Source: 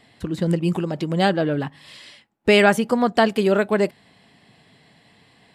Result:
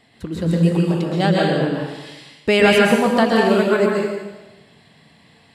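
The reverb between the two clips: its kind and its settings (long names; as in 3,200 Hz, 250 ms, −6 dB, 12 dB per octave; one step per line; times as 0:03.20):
dense smooth reverb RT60 1.1 s, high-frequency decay 1×, pre-delay 110 ms, DRR −2.5 dB
level −1.5 dB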